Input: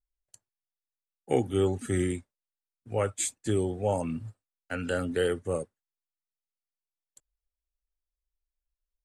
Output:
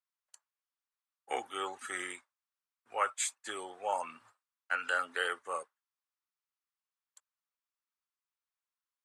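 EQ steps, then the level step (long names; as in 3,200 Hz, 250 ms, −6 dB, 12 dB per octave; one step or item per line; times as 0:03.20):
high-pass with resonance 1,100 Hz, resonance Q 2.5
high-shelf EQ 7,500 Hz −8 dB
0.0 dB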